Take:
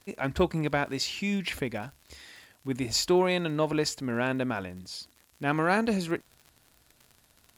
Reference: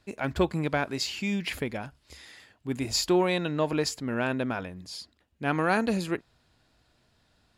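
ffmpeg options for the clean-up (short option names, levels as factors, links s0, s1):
-af "adeclick=t=4,agate=range=0.0891:threshold=0.00158"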